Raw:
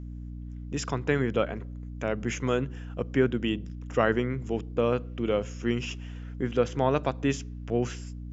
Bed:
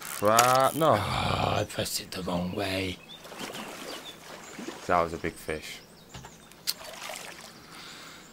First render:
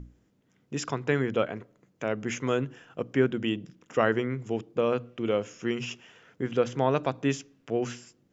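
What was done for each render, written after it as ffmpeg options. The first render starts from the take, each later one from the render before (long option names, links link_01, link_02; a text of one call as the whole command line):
ffmpeg -i in.wav -af "bandreject=frequency=60:width_type=h:width=6,bandreject=frequency=120:width_type=h:width=6,bandreject=frequency=180:width_type=h:width=6,bandreject=frequency=240:width_type=h:width=6,bandreject=frequency=300:width_type=h:width=6" out.wav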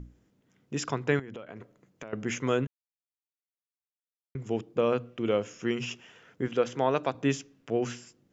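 ffmpeg -i in.wav -filter_complex "[0:a]asettb=1/sr,asplit=3[link_01][link_02][link_03];[link_01]atrim=end=1.194[link_04];[link_02]atrim=start=1.19:end=2.13,asetpts=PTS-STARTPTS,afade=type=in:duration=0.004:curve=qsin,afade=type=out:start_time=0.936:duration=0.004:curve=qsin,acompressor=threshold=-37dB:ratio=20:attack=3.2:release=140:knee=1:detection=peak[link_05];[link_03]atrim=start=2.126[link_06];[link_04][link_05]acrossfade=duration=0.004:curve1=hsin:curve2=qsin[link_07];[link_07][link_06]acrossfade=duration=0.004:curve1=qsin:curve2=hsin,asettb=1/sr,asplit=3[link_08][link_09][link_10];[link_08]atrim=end=6.484[link_11];[link_09]atrim=start=6.48:end=7.15,asetpts=PTS-STARTPTS,afade=type=in:duration=0.004:curve=qsin,afade=type=out:start_time=0.666:duration=0.004:curve=qsin,highpass=frequency=260:poles=1[link_12];[link_10]atrim=start=7.146[link_13];[link_11][link_12]acrossfade=duration=0.004:curve1=hsin:curve2=qsin[link_14];[link_14][link_13]acrossfade=duration=0.004:curve1=qsin:curve2=hsin,asplit=3[link_15][link_16][link_17];[link_15]atrim=end=2.67,asetpts=PTS-STARTPTS,afade=type=out:start_time=2.666:duration=0.004:curve=hsin[link_18];[link_16]atrim=start=2.67:end=4.35,asetpts=PTS-STARTPTS,volume=0[link_19];[link_17]atrim=start=4.35,asetpts=PTS-STARTPTS,afade=type=in:duration=0.004:curve=hsin[link_20];[link_18][link_19][link_20]concat=n=3:v=0:a=1" out.wav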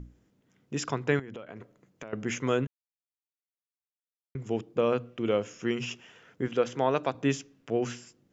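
ffmpeg -i in.wav -af anull out.wav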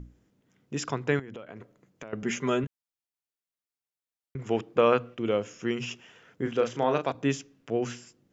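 ffmpeg -i in.wav -filter_complex "[0:a]asettb=1/sr,asplit=3[link_01][link_02][link_03];[link_01]atrim=end=2.224[link_04];[link_02]atrim=start=2.22:end=2.64,asetpts=PTS-STARTPTS,afade=type=in:duration=0.004:curve=qsin,afade=type=out:start_time=0.416:duration=0.004:curve=qsin,aecho=1:1:5:0.65,atrim=end_sample=18522[link_05];[link_03]atrim=start=2.636[link_06];[link_04][link_05]acrossfade=duration=0.004:curve1=hsin:curve2=qsin[link_07];[link_07][link_06]acrossfade=duration=0.004:curve1=qsin:curve2=hsin,asettb=1/sr,asplit=3[link_08][link_09][link_10];[link_08]atrim=end=4.394[link_11];[link_09]atrim=start=4.39:end=5.15,asetpts=PTS-STARTPTS,afade=type=in:duration=0.004:curve=qsin,afade=type=out:start_time=0.756:duration=0.004:curve=qsin,equalizer=frequency=1500:width=0.41:gain=9[link_12];[link_10]atrim=start=5.146[link_13];[link_11][link_12]acrossfade=duration=0.004:curve1=hsin:curve2=qsin[link_14];[link_14][link_13]acrossfade=duration=0.004:curve1=qsin:curve2=hsin,asettb=1/sr,asplit=3[link_15][link_16][link_17];[link_15]atrim=end=6.424[link_18];[link_16]atrim=start=6.42:end=7.12,asetpts=PTS-STARTPTS,afade=type=in:duration=0.004:curve=qsin,afade=type=out:start_time=0.696:duration=0.004:curve=qsin,asplit=2[link_19][link_20];[link_20]adelay=35,volume=-7dB[link_21];[link_19][link_21]amix=inputs=2:normalize=0,atrim=end_sample=30870[link_22];[link_17]atrim=start=7.116[link_23];[link_18][link_22]acrossfade=duration=0.004:curve1=hsin:curve2=qsin[link_24];[link_24][link_23]acrossfade=duration=0.004:curve1=qsin:curve2=hsin" out.wav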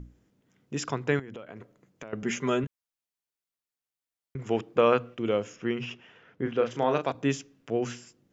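ffmpeg -i in.wav -filter_complex "[0:a]asettb=1/sr,asplit=3[link_01][link_02][link_03];[link_01]atrim=end=5.564[link_04];[link_02]atrim=start=5.56:end=6.71,asetpts=PTS-STARTPTS,afade=type=in:duration=0.004:curve=qsin,afade=type=out:start_time=1.146:duration=0.004:curve=qsin,lowpass=3300[link_05];[link_03]atrim=start=6.706[link_06];[link_04][link_05]acrossfade=duration=0.004:curve1=hsin:curve2=qsin[link_07];[link_07][link_06]acrossfade=duration=0.004:curve1=qsin:curve2=hsin" out.wav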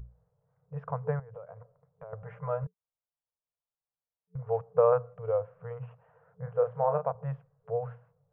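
ffmpeg -i in.wav -af "lowpass=frequency=1100:width=0.5412,lowpass=frequency=1100:width=1.3066,afftfilt=real='re*(1-between(b*sr/4096,180,440))':imag='im*(1-between(b*sr/4096,180,440))':win_size=4096:overlap=0.75" out.wav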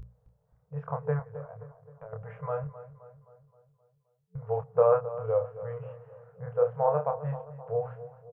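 ffmpeg -i in.wav -filter_complex "[0:a]asplit=2[link_01][link_02];[link_02]adelay=27,volume=-5dB[link_03];[link_01][link_03]amix=inputs=2:normalize=0,asplit=2[link_04][link_05];[link_05]adelay=262,lowpass=frequency=1900:poles=1,volume=-14dB,asplit=2[link_06][link_07];[link_07]adelay=262,lowpass=frequency=1900:poles=1,volume=0.55,asplit=2[link_08][link_09];[link_09]adelay=262,lowpass=frequency=1900:poles=1,volume=0.55,asplit=2[link_10][link_11];[link_11]adelay=262,lowpass=frequency=1900:poles=1,volume=0.55,asplit=2[link_12][link_13];[link_13]adelay=262,lowpass=frequency=1900:poles=1,volume=0.55,asplit=2[link_14][link_15];[link_15]adelay=262,lowpass=frequency=1900:poles=1,volume=0.55[link_16];[link_04][link_06][link_08][link_10][link_12][link_14][link_16]amix=inputs=7:normalize=0" out.wav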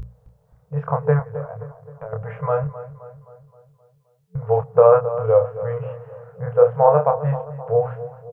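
ffmpeg -i in.wav -af "volume=11.5dB,alimiter=limit=-2dB:level=0:latency=1" out.wav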